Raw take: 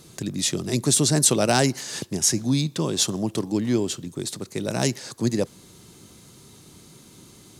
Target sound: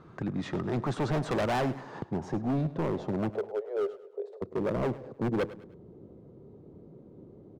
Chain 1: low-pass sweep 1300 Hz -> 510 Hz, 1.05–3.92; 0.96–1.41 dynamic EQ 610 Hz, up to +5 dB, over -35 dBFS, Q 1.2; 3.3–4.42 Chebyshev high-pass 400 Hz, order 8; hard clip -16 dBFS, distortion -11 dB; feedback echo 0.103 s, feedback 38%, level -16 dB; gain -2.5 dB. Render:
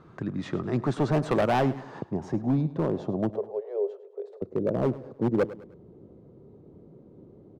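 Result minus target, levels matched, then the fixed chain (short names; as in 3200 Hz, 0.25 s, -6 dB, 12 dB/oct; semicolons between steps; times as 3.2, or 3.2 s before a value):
hard clip: distortion -6 dB
low-pass sweep 1300 Hz -> 510 Hz, 1.05–3.92; 0.96–1.41 dynamic EQ 610 Hz, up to +5 dB, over -35 dBFS, Q 1.2; 3.3–4.42 Chebyshev high-pass 400 Hz, order 8; hard clip -23 dBFS, distortion -5 dB; feedback echo 0.103 s, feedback 38%, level -16 dB; gain -2.5 dB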